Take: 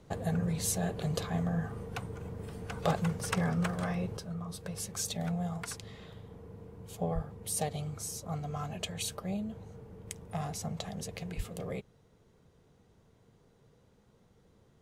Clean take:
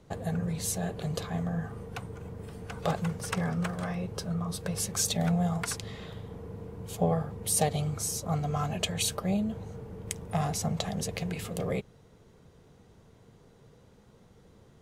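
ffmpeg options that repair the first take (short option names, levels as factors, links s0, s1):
-filter_complex "[0:a]asplit=3[s0][s1][s2];[s0]afade=t=out:st=7.14:d=0.02[s3];[s1]highpass=f=140:w=0.5412,highpass=f=140:w=1.3066,afade=t=in:st=7.14:d=0.02,afade=t=out:st=7.26:d=0.02[s4];[s2]afade=t=in:st=7.26:d=0.02[s5];[s3][s4][s5]amix=inputs=3:normalize=0,asplit=3[s6][s7][s8];[s6]afade=t=out:st=11.36:d=0.02[s9];[s7]highpass=f=140:w=0.5412,highpass=f=140:w=1.3066,afade=t=in:st=11.36:d=0.02,afade=t=out:st=11.48:d=0.02[s10];[s8]afade=t=in:st=11.48:d=0.02[s11];[s9][s10][s11]amix=inputs=3:normalize=0,asetnsamples=n=441:p=0,asendcmd='4.17 volume volume 7dB',volume=1"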